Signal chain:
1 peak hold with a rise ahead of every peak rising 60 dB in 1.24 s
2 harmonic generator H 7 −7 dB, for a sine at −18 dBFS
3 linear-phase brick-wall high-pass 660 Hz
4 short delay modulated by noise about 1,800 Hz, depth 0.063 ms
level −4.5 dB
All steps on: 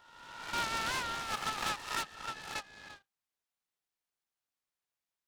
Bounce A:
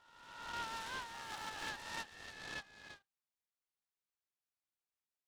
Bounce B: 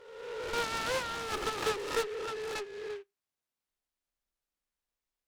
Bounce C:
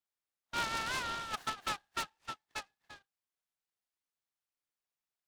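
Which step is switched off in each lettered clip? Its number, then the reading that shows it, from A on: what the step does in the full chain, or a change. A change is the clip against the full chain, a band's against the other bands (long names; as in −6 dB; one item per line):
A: 2, change in crest factor +2.0 dB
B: 3, 500 Hz band +14.0 dB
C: 1, change in momentary loudness spread +4 LU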